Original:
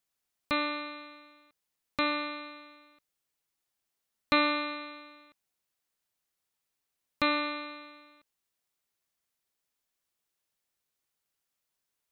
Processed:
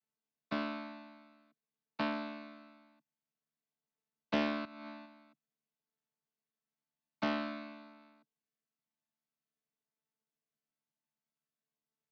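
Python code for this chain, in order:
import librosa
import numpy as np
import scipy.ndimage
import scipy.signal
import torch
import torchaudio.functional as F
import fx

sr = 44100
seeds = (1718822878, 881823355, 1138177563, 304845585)

y = fx.chord_vocoder(x, sr, chord='bare fifth', root=50)
y = fx.over_compress(y, sr, threshold_db=-43.0, ratio=-1.0, at=(4.65, 5.06))
y = fx.doppler_dist(y, sr, depth_ms=0.36)
y = y * 10.0 ** (-6.0 / 20.0)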